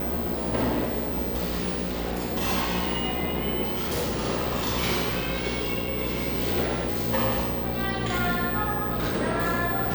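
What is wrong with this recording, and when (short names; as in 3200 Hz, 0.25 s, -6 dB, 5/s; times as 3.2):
buzz 60 Hz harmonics 9 -32 dBFS
3.63–4.26 clipped -23.5 dBFS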